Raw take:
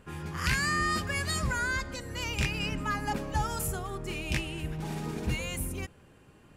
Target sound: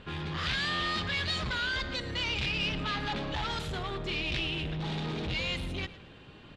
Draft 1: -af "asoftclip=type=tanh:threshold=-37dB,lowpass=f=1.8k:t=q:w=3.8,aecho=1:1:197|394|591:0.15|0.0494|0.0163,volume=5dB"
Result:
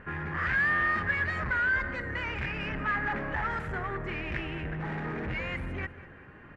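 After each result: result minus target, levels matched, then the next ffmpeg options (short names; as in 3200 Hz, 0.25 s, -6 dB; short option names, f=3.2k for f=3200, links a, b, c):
4000 Hz band -16.0 dB; echo 88 ms late
-af "asoftclip=type=tanh:threshold=-37dB,lowpass=f=3.7k:t=q:w=3.8,aecho=1:1:197|394|591:0.15|0.0494|0.0163,volume=5dB"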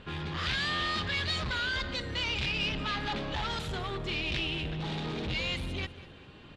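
echo 88 ms late
-af "asoftclip=type=tanh:threshold=-37dB,lowpass=f=3.7k:t=q:w=3.8,aecho=1:1:109|218|327:0.15|0.0494|0.0163,volume=5dB"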